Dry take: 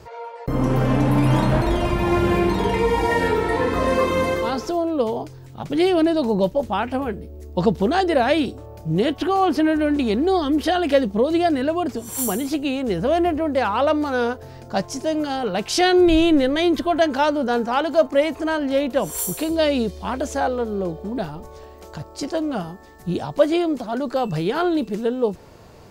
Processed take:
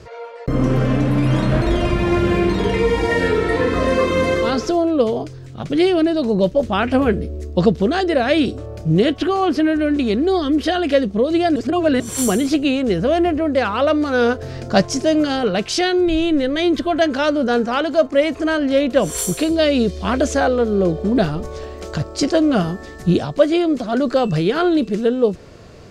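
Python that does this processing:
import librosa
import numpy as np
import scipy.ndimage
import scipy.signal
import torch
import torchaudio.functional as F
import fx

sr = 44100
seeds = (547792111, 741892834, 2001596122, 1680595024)

y = fx.edit(x, sr, fx.reverse_span(start_s=11.56, length_s=0.44), tone=tone)
y = scipy.signal.sosfilt(scipy.signal.butter(2, 8000.0, 'lowpass', fs=sr, output='sos'), y)
y = fx.peak_eq(y, sr, hz=880.0, db=-11.0, octaves=0.37)
y = fx.rider(y, sr, range_db=10, speed_s=0.5)
y = y * 10.0 ** (4.0 / 20.0)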